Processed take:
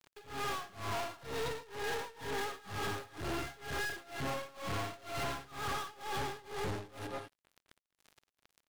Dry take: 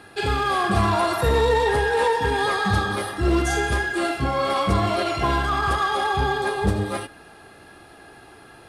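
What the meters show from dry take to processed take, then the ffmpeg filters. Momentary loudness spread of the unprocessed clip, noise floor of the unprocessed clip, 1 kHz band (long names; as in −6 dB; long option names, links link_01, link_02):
4 LU, −47 dBFS, −18.0 dB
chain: -filter_complex "[0:a]acrossover=split=4700[link_01][link_02];[link_02]acompressor=threshold=-54dB:ratio=4:attack=1:release=60[link_03];[link_01][link_03]amix=inputs=2:normalize=0,aecho=1:1:7.2:0.61,aeval=exprs='sgn(val(0))*max(abs(val(0))-0.015,0)':channel_layout=same,acompressor=threshold=-23dB:ratio=6,asplit=2[link_04][link_05];[link_05]aecho=0:1:212:0.158[link_06];[link_04][link_06]amix=inputs=2:normalize=0,aeval=exprs='(tanh(158*val(0)+0.45)-tanh(0.45))/158':channel_layout=same,tremolo=f=2.1:d=0.93,volume=9dB"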